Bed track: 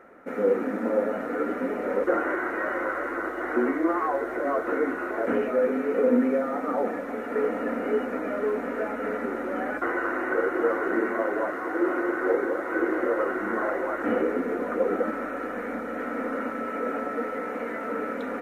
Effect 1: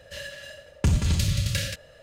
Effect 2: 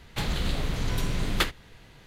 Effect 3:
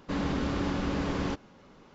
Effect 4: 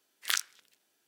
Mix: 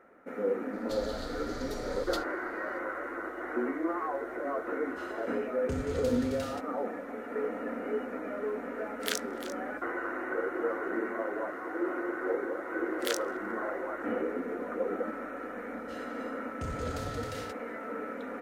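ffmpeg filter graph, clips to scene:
ffmpeg -i bed.wav -i cue0.wav -i cue1.wav -i cue2.wav -i cue3.wav -filter_complex "[1:a]asplit=2[link_01][link_02];[4:a]asplit=2[link_03][link_04];[0:a]volume=-7.5dB[link_05];[2:a]firequalizer=gain_entry='entry(100,0);entry(360,-27);entry(4500,11);entry(9100,3)':delay=0.05:min_phase=1[link_06];[link_03]aecho=1:1:345:0.211[link_07];[link_04]asplit=2[link_08][link_09];[link_09]adelay=139.9,volume=-29dB,highshelf=frequency=4000:gain=-3.15[link_10];[link_08][link_10]amix=inputs=2:normalize=0[link_11];[link_02]alimiter=limit=-16dB:level=0:latency=1:release=71[link_12];[link_06]atrim=end=2.06,asetpts=PTS-STARTPTS,volume=-15.5dB,afade=type=in:duration=0.004:curve=hsin,afade=type=out:start_time=2.056:duration=0.004:curve=hsin,adelay=730[link_13];[link_01]atrim=end=2.02,asetpts=PTS-STARTPTS,volume=-16.5dB,afade=type=in:duration=0.004:curve=hsin,afade=type=out:start_time=2.016:duration=0.004:curve=hsin,adelay=213885S[link_14];[link_07]atrim=end=1.07,asetpts=PTS-STARTPTS,volume=-4dB,afade=type=in:duration=0.004:curve=hsin,afade=type=out:start_time=1.066:duration=0.004:curve=hsin,adelay=8780[link_15];[link_11]atrim=end=1.07,asetpts=PTS-STARTPTS,volume=-5.5dB,afade=type=in:duration=0.004:curve=hsin,afade=type=out:start_time=1.066:duration=0.004:curve=hsin,adelay=12770[link_16];[link_12]atrim=end=2.02,asetpts=PTS-STARTPTS,volume=-15.5dB,afade=type=in:duration=0.004:curve=hsin,afade=type=out:start_time=2.016:duration=0.004:curve=hsin,adelay=15770[link_17];[link_05][link_13][link_14][link_15][link_16][link_17]amix=inputs=6:normalize=0" out.wav

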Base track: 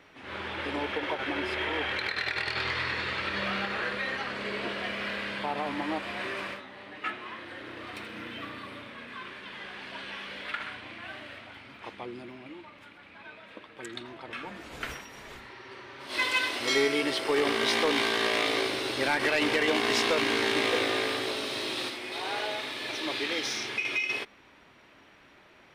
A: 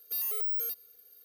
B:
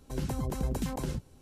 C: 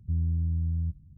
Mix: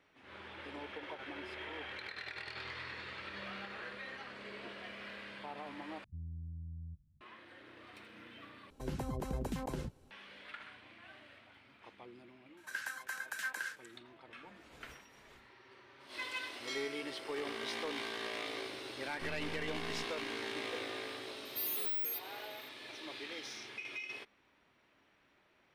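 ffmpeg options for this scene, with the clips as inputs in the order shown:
ffmpeg -i bed.wav -i cue0.wav -i cue1.wav -i cue2.wav -filter_complex "[3:a]asplit=2[link_01][link_02];[2:a]asplit=2[link_03][link_04];[0:a]volume=-14dB[link_05];[link_03]bass=frequency=250:gain=-5,treble=frequency=4000:gain=-7[link_06];[link_04]highpass=frequency=1600:width_type=q:width=14[link_07];[link_02]aeval=exprs='abs(val(0))':channel_layout=same[link_08];[1:a]acontrast=85[link_09];[link_05]asplit=3[link_10][link_11][link_12];[link_10]atrim=end=6.044[link_13];[link_01]atrim=end=1.17,asetpts=PTS-STARTPTS,volume=-17.5dB[link_14];[link_11]atrim=start=7.206:end=8.704[link_15];[link_06]atrim=end=1.41,asetpts=PTS-STARTPTS,volume=-3dB[link_16];[link_12]atrim=start=10.106[link_17];[link_07]atrim=end=1.41,asetpts=PTS-STARTPTS,volume=-3.5dB,afade=type=in:duration=0.004:curve=hsin,afade=type=out:start_time=1.406:duration=0.004:curve=hsin,adelay=12570[link_18];[link_08]atrim=end=1.17,asetpts=PTS-STARTPTS,volume=-17dB,afade=type=in:duration=0.004:curve=hsin,afade=type=out:start_time=1.166:duration=0.004:curve=hsin,adelay=19130[link_19];[link_09]atrim=end=1.24,asetpts=PTS-STARTPTS,volume=-12.5dB,afade=type=in:duration=0.004:curve=hsin,afade=type=out:start_time=1.236:duration=0.004:curve=hsin,adelay=21450[link_20];[link_13][link_14]acrossfade=duration=0.004:curve1=hsin:curve2=hsin[link_21];[link_21][link_15]acrossfade=duration=0.004:curve1=hsin:curve2=hsin[link_22];[link_22][link_16]acrossfade=duration=0.004:curve1=hsin:curve2=hsin[link_23];[link_23][link_17]acrossfade=duration=0.004:curve1=hsin:curve2=hsin[link_24];[link_24][link_18][link_19][link_20]amix=inputs=4:normalize=0" out.wav

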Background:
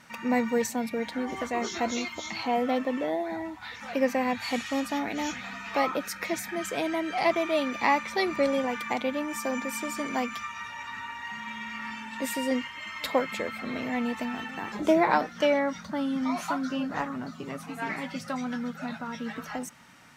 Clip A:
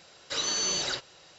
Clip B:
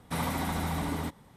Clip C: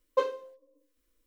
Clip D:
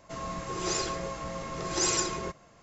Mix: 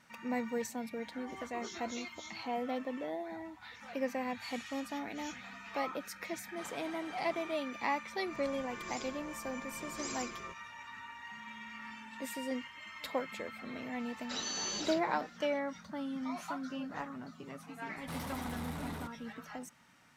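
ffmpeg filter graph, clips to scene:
ffmpeg -i bed.wav -i cue0.wav -i cue1.wav -i cue2.wav -i cue3.wav -filter_complex "[2:a]asplit=2[link_01][link_02];[0:a]volume=-10dB[link_03];[link_01]highpass=340,lowpass=6400[link_04];[link_02]asoftclip=type=tanh:threshold=-33.5dB[link_05];[link_04]atrim=end=1.36,asetpts=PTS-STARTPTS,volume=-15.5dB,afade=type=in:duration=0.004:curve=hsin,afade=type=out:start_time=1.356:duration=0.004:curve=hsin,adelay=6460[link_06];[4:a]atrim=end=2.62,asetpts=PTS-STARTPTS,volume=-15.5dB,afade=type=in:duration=0.004:curve=hsin,afade=type=out:start_time=2.616:duration=0.004:curve=hsin,adelay=8220[link_07];[1:a]atrim=end=1.38,asetpts=PTS-STARTPTS,volume=-9.5dB,afade=type=in:duration=0.004:curve=hsin,afade=type=out:start_time=1.376:duration=0.004:curve=hsin,adelay=13990[link_08];[link_05]atrim=end=1.36,asetpts=PTS-STARTPTS,volume=-5dB,afade=type=in:duration=0.004:curve=hsin,afade=type=out:start_time=1.356:duration=0.004:curve=hsin,adelay=17970[link_09];[link_03][link_06][link_07][link_08][link_09]amix=inputs=5:normalize=0" out.wav

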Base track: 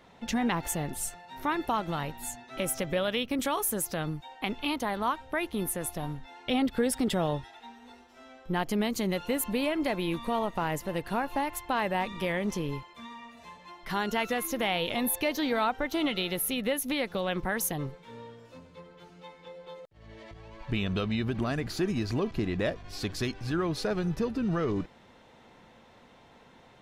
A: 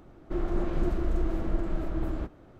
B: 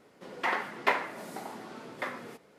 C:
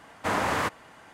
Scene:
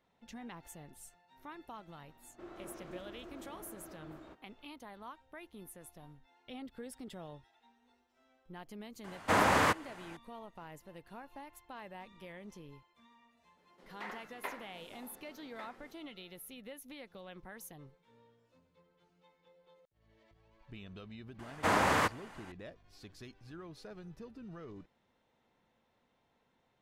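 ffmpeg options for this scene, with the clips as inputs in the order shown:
ffmpeg -i bed.wav -i cue0.wav -i cue1.wav -i cue2.wav -filter_complex "[3:a]asplit=2[link_01][link_02];[0:a]volume=-19.5dB[link_03];[1:a]highpass=frequency=600:poles=1,atrim=end=2.59,asetpts=PTS-STARTPTS,volume=-11dB,afade=type=in:duration=0.004:curve=hsin,afade=type=out:start_time=2.586:duration=0.004:curve=hsin,adelay=2080[link_04];[link_01]atrim=end=1.13,asetpts=PTS-STARTPTS,volume=-0.5dB,afade=type=in:duration=0.004:curve=hsin,afade=type=out:start_time=1.126:duration=0.004:curve=hsin,adelay=9040[link_05];[2:a]atrim=end=2.58,asetpts=PTS-STARTPTS,volume=-15.5dB,afade=type=in:duration=0.004:curve=hsin,afade=type=out:start_time=2.576:duration=0.004:curve=hsin,adelay=13570[link_06];[link_02]atrim=end=1.13,asetpts=PTS-STARTPTS,volume=-2dB,afade=type=in:duration=0.004:curve=hsin,afade=type=out:start_time=1.126:duration=0.004:curve=hsin,adelay=21390[link_07];[link_03][link_04][link_05][link_06][link_07]amix=inputs=5:normalize=0" out.wav

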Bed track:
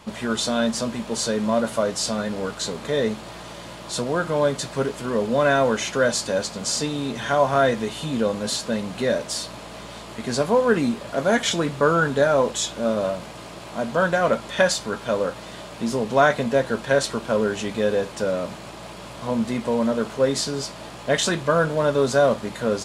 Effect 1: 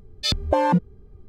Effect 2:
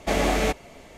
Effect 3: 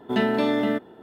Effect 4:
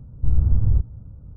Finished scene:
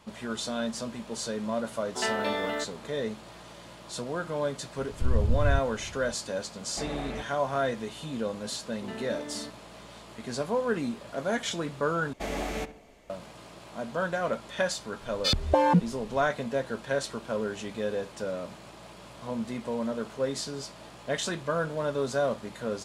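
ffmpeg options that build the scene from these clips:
ffmpeg -i bed.wav -i cue0.wav -i cue1.wav -i cue2.wav -i cue3.wav -filter_complex "[3:a]asplit=2[link_01][link_02];[2:a]asplit=2[link_03][link_04];[0:a]volume=-9.5dB[link_05];[link_01]highpass=600[link_06];[link_03]lowpass=2400[link_07];[link_04]asplit=2[link_08][link_09];[link_09]adelay=68,lowpass=frequency=2100:poles=1,volume=-13dB,asplit=2[link_10][link_11];[link_11]adelay=68,lowpass=frequency=2100:poles=1,volume=0.49,asplit=2[link_12][link_13];[link_13]adelay=68,lowpass=frequency=2100:poles=1,volume=0.49,asplit=2[link_14][link_15];[link_15]adelay=68,lowpass=frequency=2100:poles=1,volume=0.49,asplit=2[link_16][link_17];[link_17]adelay=68,lowpass=frequency=2100:poles=1,volume=0.49[link_18];[link_08][link_10][link_12][link_14][link_16][link_18]amix=inputs=6:normalize=0[link_19];[link_05]asplit=2[link_20][link_21];[link_20]atrim=end=12.134[link_22];[link_19]atrim=end=0.97,asetpts=PTS-STARTPTS,volume=-10.5dB[link_23];[link_21]atrim=start=13.096[link_24];[link_06]atrim=end=1.02,asetpts=PTS-STARTPTS,volume=-2dB,afade=type=in:duration=0.004:curve=hsin,afade=type=out:start_time=1.016:duration=0.004:curve=hsin,adelay=1860[link_25];[4:a]atrim=end=1.36,asetpts=PTS-STARTPTS,volume=-7dB,afade=type=in:duration=0.004:curve=hsin,afade=type=out:start_time=1.356:duration=0.004:curve=hsin,adelay=4780[link_26];[link_07]atrim=end=0.97,asetpts=PTS-STARTPTS,volume=-13.5dB,afade=type=in:duration=0.004:curve=hsin,afade=type=out:start_time=0.966:duration=0.004:curve=hsin,adelay=6700[link_27];[link_02]atrim=end=1.02,asetpts=PTS-STARTPTS,volume=-17.5dB,afade=type=in:duration=0.004:curve=hsin,afade=type=out:start_time=1.016:duration=0.004:curve=hsin,adelay=8720[link_28];[1:a]atrim=end=1.28,asetpts=PTS-STARTPTS,volume=-2.5dB,afade=type=in:duration=0.004:curve=hsin,afade=type=out:start_time=1.276:duration=0.004:curve=hsin,adelay=15010[link_29];[link_22][link_23]acrossfade=duration=0.004:curve1=hsin:curve2=hsin[link_30];[link_30][link_24]acrossfade=duration=0.004:curve1=hsin:curve2=hsin[link_31];[link_31][link_25][link_26][link_27][link_28][link_29]amix=inputs=6:normalize=0" out.wav

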